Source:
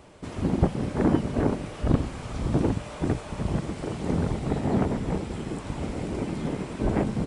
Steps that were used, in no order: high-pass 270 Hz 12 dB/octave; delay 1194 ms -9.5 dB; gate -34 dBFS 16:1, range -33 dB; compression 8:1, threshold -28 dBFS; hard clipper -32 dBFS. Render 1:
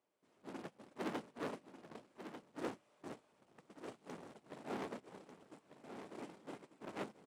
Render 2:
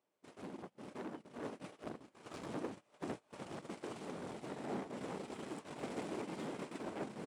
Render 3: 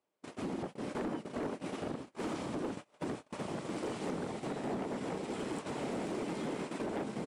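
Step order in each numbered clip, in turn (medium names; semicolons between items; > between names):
hard clipper > high-pass > compression > gate > delay; compression > hard clipper > delay > gate > high-pass; delay > compression > gate > high-pass > hard clipper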